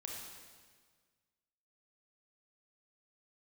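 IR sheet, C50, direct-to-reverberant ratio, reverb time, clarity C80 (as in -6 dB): 0.5 dB, -1.5 dB, 1.6 s, 2.5 dB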